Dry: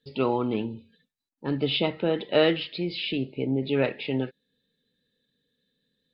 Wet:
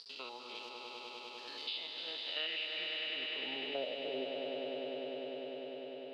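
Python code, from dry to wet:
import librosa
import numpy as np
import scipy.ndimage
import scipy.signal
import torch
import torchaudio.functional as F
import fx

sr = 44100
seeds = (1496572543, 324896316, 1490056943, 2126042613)

p1 = fx.spec_steps(x, sr, hold_ms=100)
p2 = fx.peak_eq(p1, sr, hz=87.0, db=-11.5, octaves=2.2)
p3 = fx.level_steps(p2, sr, step_db=9)
p4 = p2 + (p3 * librosa.db_to_amplitude(-2.0))
p5 = np.sign(p4) * np.maximum(np.abs(p4) - 10.0 ** (-49.5 / 20.0), 0.0)
p6 = fx.filter_sweep_bandpass(p5, sr, from_hz=4600.0, to_hz=430.0, start_s=2.07, end_s=4.16, q=4.4)
p7 = fx.tilt_eq(p6, sr, slope=3.0, at=(0.55, 1.67))
p8 = fx.echo_swell(p7, sr, ms=100, loudest=5, wet_db=-7)
p9 = fx.band_squash(p8, sr, depth_pct=70)
y = p9 * librosa.db_to_amplitude(-4.0)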